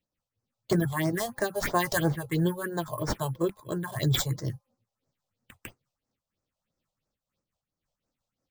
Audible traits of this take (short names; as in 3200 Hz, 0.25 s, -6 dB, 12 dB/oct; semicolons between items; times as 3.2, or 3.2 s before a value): aliases and images of a low sample rate 11000 Hz, jitter 0%; phasing stages 4, 3 Hz, lowest notch 270–3200 Hz; noise-modulated level